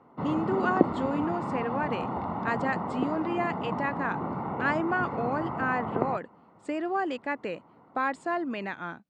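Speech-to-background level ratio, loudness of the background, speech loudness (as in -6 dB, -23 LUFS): 0.5 dB, -32.0 LUFS, -31.5 LUFS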